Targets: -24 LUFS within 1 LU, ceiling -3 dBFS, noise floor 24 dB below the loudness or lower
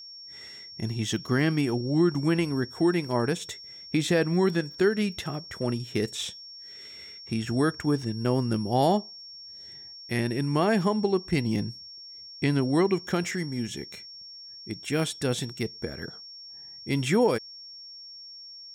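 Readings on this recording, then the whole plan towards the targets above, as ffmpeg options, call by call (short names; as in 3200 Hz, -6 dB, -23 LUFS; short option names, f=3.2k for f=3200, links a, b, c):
steady tone 5500 Hz; tone level -42 dBFS; loudness -27.0 LUFS; peak -12.0 dBFS; loudness target -24.0 LUFS
-> -af "bandreject=f=5.5k:w=30"
-af "volume=3dB"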